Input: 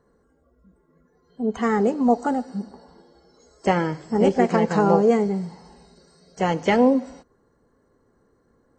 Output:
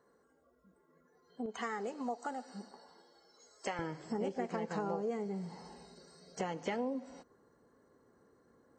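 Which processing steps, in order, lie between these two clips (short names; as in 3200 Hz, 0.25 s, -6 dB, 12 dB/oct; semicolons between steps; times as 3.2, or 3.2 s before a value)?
HPF 490 Hz 6 dB/oct, from 1.46 s 1200 Hz, from 3.79 s 170 Hz; compressor 4:1, threshold -34 dBFS, peak gain reduction 17.5 dB; gain -2.5 dB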